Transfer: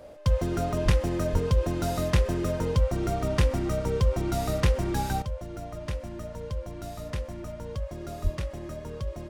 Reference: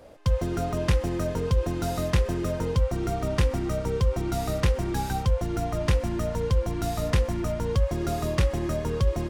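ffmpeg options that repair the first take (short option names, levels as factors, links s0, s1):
-filter_complex "[0:a]bandreject=f=600:w=30,asplit=3[s0][s1][s2];[s0]afade=t=out:st=0.84:d=0.02[s3];[s1]highpass=f=140:w=0.5412,highpass=f=140:w=1.3066,afade=t=in:st=0.84:d=0.02,afade=t=out:st=0.96:d=0.02[s4];[s2]afade=t=in:st=0.96:d=0.02[s5];[s3][s4][s5]amix=inputs=3:normalize=0,asplit=3[s6][s7][s8];[s6]afade=t=out:st=1.32:d=0.02[s9];[s7]highpass=f=140:w=0.5412,highpass=f=140:w=1.3066,afade=t=in:st=1.32:d=0.02,afade=t=out:st=1.44:d=0.02[s10];[s8]afade=t=in:st=1.44:d=0.02[s11];[s9][s10][s11]amix=inputs=3:normalize=0,asplit=3[s12][s13][s14];[s12]afade=t=out:st=8.23:d=0.02[s15];[s13]highpass=f=140:w=0.5412,highpass=f=140:w=1.3066,afade=t=in:st=8.23:d=0.02,afade=t=out:st=8.35:d=0.02[s16];[s14]afade=t=in:st=8.35:d=0.02[s17];[s15][s16][s17]amix=inputs=3:normalize=0,asetnsamples=n=441:p=0,asendcmd='5.22 volume volume 10dB',volume=1"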